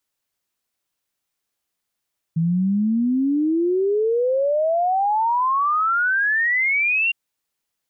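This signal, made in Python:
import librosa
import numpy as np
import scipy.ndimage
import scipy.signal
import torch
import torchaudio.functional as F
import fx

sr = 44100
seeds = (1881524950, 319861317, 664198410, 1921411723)

y = fx.ess(sr, length_s=4.76, from_hz=160.0, to_hz=2800.0, level_db=-16.5)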